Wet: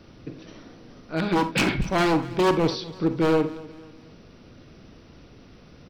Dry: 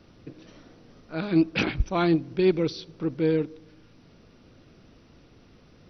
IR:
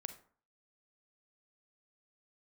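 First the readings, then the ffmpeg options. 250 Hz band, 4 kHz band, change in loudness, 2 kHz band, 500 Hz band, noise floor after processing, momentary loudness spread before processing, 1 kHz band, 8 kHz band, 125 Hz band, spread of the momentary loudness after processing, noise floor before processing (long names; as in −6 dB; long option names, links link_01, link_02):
+0.5 dB, +5.5 dB, +2.0 dB, +5.0 dB, +2.0 dB, −50 dBFS, 10 LU, +8.5 dB, can't be measured, +1.5 dB, 20 LU, −56 dBFS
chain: -filter_complex "[0:a]aeval=exprs='0.1*(abs(mod(val(0)/0.1+3,4)-2)-1)':channel_layout=same,aecho=1:1:243|486|729:0.112|0.0438|0.0171[link_01];[1:a]atrim=start_sample=2205,atrim=end_sample=4410[link_02];[link_01][link_02]afir=irnorm=-1:irlink=0,volume=8.5dB"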